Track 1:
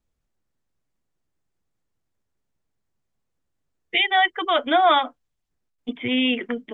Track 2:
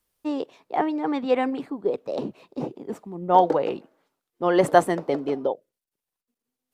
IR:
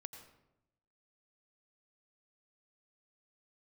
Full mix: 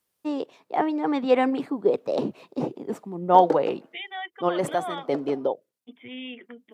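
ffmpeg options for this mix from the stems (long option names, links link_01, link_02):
-filter_complex "[0:a]volume=-16.5dB,asplit=2[link_01][link_02];[1:a]dynaudnorm=framelen=270:gausssize=11:maxgain=11.5dB,volume=-1dB[link_03];[link_02]apad=whole_len=297195[link_04];[link_03][link_04]sidechaincompress=threshold=-41dB:ratio=10:attack=16:release=168[link_05];[link_01][link_05]amix=inputs=2:normalize=0,highpass=98"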